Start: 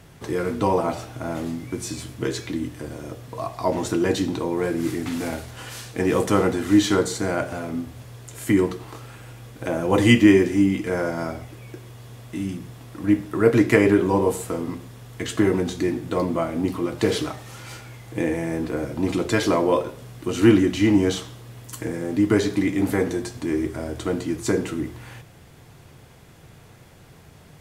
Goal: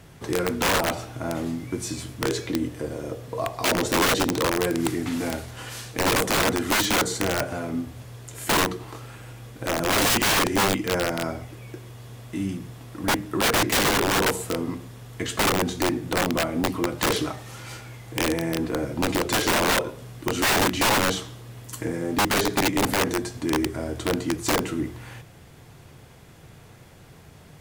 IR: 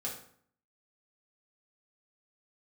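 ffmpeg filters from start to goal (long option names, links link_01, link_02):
-filter_complex "[0:a]asettb=1/sr,asplit=3[link_01][link_02][link_03];[link_01]atrim=end=2.304[link_04];[link_02]atrim=start=2.3:end=4.5,asetpts=PTS-STARTPTS,afade=type=in:duration=0.004:curve=qsin,afade=type=out:start_time=2.196:duration=0.004:curve=qsin,equalizer=frequency=480:width=2.2:gain=7[link_05];[link_03]atrim=start=4.496[link_06];[link_04][link_05]acrossfade=duration=0.004:curve1=hsin:curve2=qsin[link_07];[link_07][link_06]acrossfade=duration=0.004:curve1=qsin:curve2=hsin,aeval=exprs='(mod(5.96*val(0)+1,2)-1)/5.96':channel_layout=same"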